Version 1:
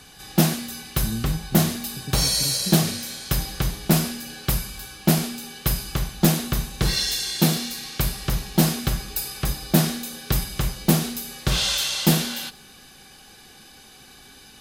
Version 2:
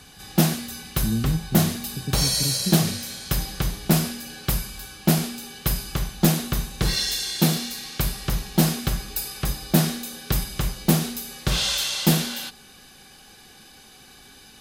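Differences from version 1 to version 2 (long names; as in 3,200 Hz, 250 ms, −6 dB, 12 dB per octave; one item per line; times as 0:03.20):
speech +4.5 dB
reverb: off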